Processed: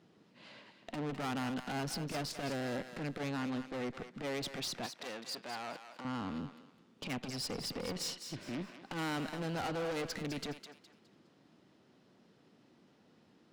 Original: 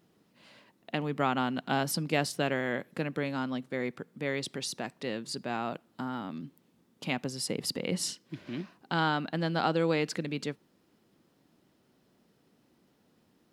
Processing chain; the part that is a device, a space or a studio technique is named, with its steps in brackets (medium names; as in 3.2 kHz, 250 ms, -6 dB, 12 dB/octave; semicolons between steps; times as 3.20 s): valve radio (band-pass 86–5700 Hz; valve stage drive 38 dB, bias 0.45; transformer saturation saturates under 160 Hz); 4.86–6.05 s: high-pass 730 Hz 6 dB/octave; thinning echo 207 ms, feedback 32%, high-pass 780 Hz, level -8 dB; trim +4 dB